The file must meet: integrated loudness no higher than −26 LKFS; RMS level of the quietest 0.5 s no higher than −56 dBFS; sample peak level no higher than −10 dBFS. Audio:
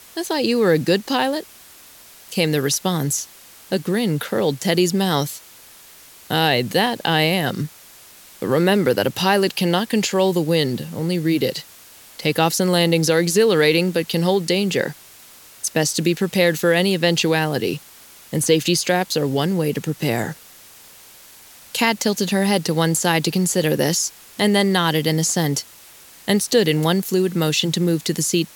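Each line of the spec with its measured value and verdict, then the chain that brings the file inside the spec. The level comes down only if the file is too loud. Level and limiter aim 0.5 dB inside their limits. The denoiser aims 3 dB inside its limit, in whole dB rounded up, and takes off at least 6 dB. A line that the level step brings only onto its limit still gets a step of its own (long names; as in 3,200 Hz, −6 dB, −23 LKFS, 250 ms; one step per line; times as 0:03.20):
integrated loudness −19.5 LKFS: out of spec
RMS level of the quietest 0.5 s −45 dBFS: out of spec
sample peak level −3.0 dBFS: out of spec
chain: broadband denoise 7 dB, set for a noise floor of −45 dBFS
level −7 dB
brickwall limiter −10.5 dBFS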